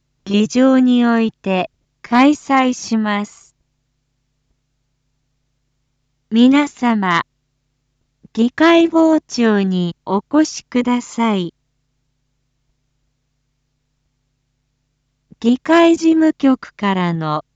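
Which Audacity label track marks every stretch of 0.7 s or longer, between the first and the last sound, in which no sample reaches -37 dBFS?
3.430000	6.320000	silence
7.220000	8.250000	silence
11.490000	15.320000	silence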